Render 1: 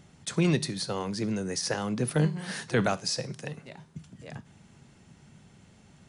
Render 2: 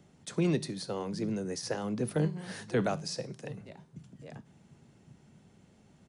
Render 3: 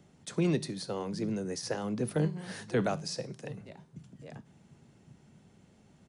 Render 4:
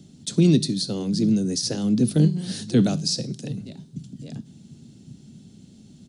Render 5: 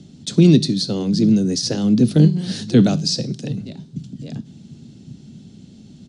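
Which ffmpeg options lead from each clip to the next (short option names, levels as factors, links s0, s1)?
-filter_complex "[0:a]acrossover=split=190|730|2000[s0][s1][s2][s3];[s0]aecho=1:1:747:0.501[s4];[s1]acontrast=76[s5];[s4][s5][s2][s3]amix=inputs=4:normalize=0,volume=0.398"
-af anull
-af "equalizer=f=125:t=o:w=1:g=3,equalizer=f=250:t=o:w=1:g=9,equalizer=f=500:t=o:w=1:g=-5,equalizer=f=1000:t=o:w=1:g=-12,equalizer=f=2000:t=o:w=1:g=-9,equalizer=f=4000:t=o:w=1:g=9,equalizer=f=8000:t=o:w=1:g=4,volume=2.37"
-af "lowpass=6100,volume=1.88"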